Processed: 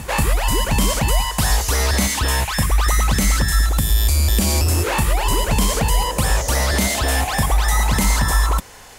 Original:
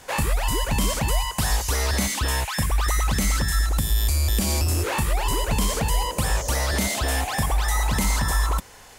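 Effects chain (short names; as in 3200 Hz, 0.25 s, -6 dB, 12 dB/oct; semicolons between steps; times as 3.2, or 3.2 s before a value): pre-echo 0.191 s -15.5 dB; gain +5 dB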